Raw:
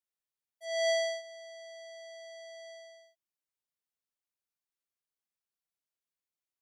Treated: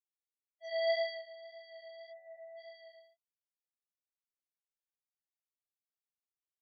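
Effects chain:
0:02.11–0:02.58: linear delta modulator 16 kbit/s, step −55 dBFS
spectral peaks only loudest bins 8
chorus effect 1.8 Hz, delay 16 ms, depth 2.6 ms

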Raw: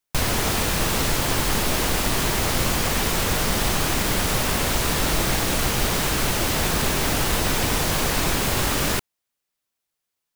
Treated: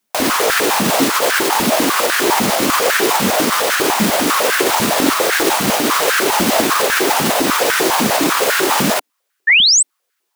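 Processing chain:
sound drawn into the spectrogram rise, 0:09.47–0:09.83, 1,700–8,600 Hz −20 dBFS
boost into a limiter +15 dB
high-pass on a step sequencer 10 Hz 210–1,500 Hz
level −5.5 dB

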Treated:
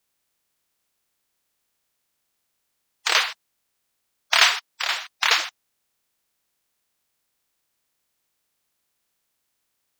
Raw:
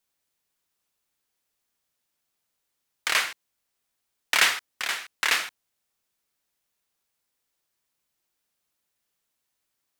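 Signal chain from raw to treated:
spectral magnitudes quantised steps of 30 dB
0:04.54–0:05.11: high-pass filter 110 Hz
level +4.5 dB

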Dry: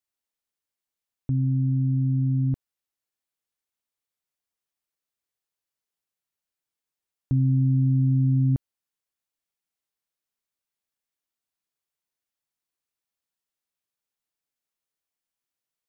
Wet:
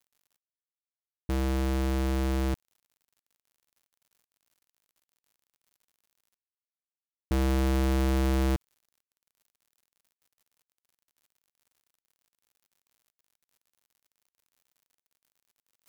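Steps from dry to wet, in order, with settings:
sub-harmonics by changed cycles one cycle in 2, inverted
reversed playback
upward compression, threshold −29 dBFS
reversed playback
centre clipping without the shift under −46.5 dBFS
level −4.5 dB

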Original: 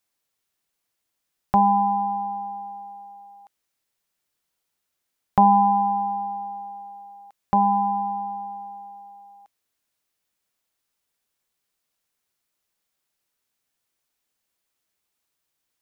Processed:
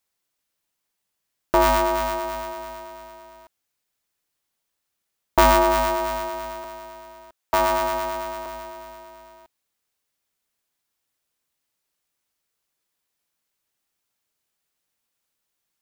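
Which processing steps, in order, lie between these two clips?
0:06.64–0:08.46: elliptic high-pass filter 470 Hz
ring modulator with a square carrier 150 Hz

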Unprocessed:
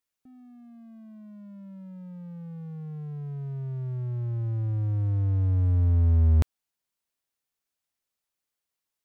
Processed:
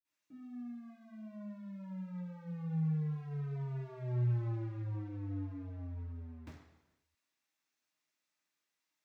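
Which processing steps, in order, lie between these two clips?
compressor whose output falls as the input rises −29 dBFS, ratio −1
low-shelf EQ 73 Hz −9.5 dB
convolution reverb, pre-delay 46 ms, DRR −60 dB
level +10 dB

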